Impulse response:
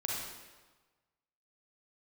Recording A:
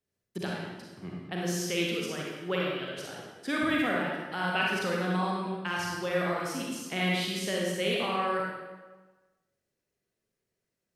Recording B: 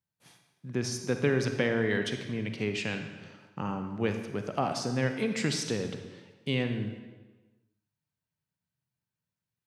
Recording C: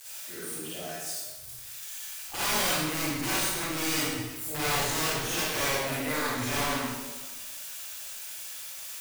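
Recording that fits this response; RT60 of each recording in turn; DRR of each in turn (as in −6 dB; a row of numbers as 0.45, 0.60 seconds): A; 1.3, 1.3, 1.3 seconds; −3.5, 6.0, −10.0 decibels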